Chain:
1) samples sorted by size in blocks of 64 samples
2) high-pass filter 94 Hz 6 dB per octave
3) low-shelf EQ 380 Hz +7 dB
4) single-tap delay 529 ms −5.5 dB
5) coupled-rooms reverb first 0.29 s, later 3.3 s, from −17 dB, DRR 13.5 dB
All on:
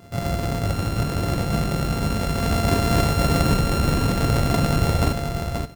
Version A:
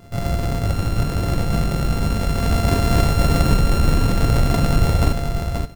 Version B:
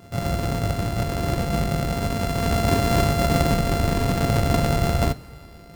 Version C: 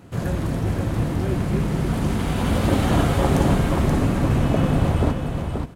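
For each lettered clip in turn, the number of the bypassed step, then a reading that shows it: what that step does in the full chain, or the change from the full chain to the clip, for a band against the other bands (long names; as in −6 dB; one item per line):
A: 2, 125 Hz band +2.5 dB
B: 4, echo-to-direct ratio −4.5 dB to −13.5 dB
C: 1, distortion level −2 dB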